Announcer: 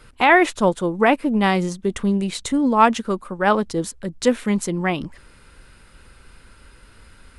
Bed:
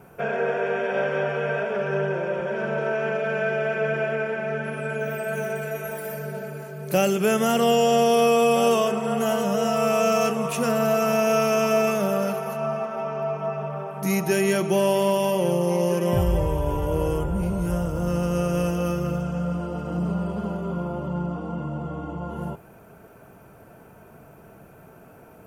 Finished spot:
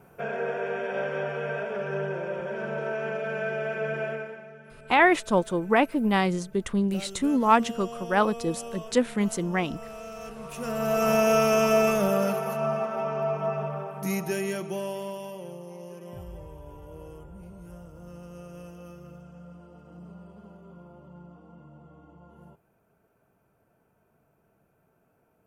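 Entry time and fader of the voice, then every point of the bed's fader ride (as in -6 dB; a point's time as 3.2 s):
4.70 s, -5.0 dB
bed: 4.1 s -5.5 dB
4.54 s -20 dB
10.16 s -20 dB
11.09 s -0.5 dB
13.59 s -0.5 dB
15.7 s -20 dB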